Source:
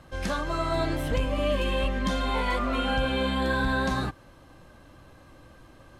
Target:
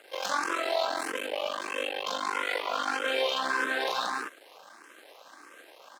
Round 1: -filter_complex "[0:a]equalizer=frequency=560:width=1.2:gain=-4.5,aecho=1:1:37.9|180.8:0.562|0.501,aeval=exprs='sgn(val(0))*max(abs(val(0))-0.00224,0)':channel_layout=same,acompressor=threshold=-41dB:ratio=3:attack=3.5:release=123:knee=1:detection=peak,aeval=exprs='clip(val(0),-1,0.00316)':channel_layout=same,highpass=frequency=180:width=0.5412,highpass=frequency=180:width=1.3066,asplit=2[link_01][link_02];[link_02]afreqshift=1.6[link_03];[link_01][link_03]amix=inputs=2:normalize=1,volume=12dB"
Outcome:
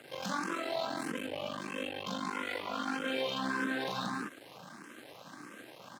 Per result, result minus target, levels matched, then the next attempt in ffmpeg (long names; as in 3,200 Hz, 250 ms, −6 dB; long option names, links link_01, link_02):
250 Hz band +11.5 dB; downward compressor: peak gain reduction +7.5 dB
-filter_complex "[0:a]equalizer=frequency=560:width=1.2:gain=-4.5,aecho=1:1:37.9|180.8:0.562|0.501,aeval=exprs='sgn(val(0))*max(abs(val(0))-0.00224,0)':channel_layout=same,acompressor=threshold=-41dB:ratio=3:attack=3.5:release=123:knee=1:detection=peak,aeval=exprs='clip(val(0),-1,0.00316)':channel_layout=same,highpass=frequency=390:width=0.5412,highpass=frequency=390:width=1.3066,asplit=2[link_01][link_02];[link_02]afreqshift=1.6[link_03];[link_01][link_03]amix=inputs=2:normalize=1,volume=12dB"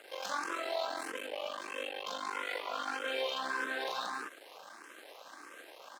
downward compressor: peak gain reduction +7.5 dB
-filter_complex "[0:a]equalizer=frequency=560:width=1.2:gain=-4.5,aecho=1:1:37.9|180.8:0.562|0.501,aeval=exprs='sgn(val(0))*max(abs(val(0))-0.00224,0)':channel_layout=same,acompressor=threshold=-29.5dB:ratio=3:attack=3.5:release=123:knee=1:detection=peak,aeval=exprs='clip(val(0),-1,0.00316)':channel_layout=same,highpass=frequency=390:width=0.5412,highpass=frequency=390:width=1.3066,asplit=2[link_01][link_02];[link_02]afreqshift=1.6[link_03];[link_01][link_03]amix=inputs=2:normalize=1,volume=12dB"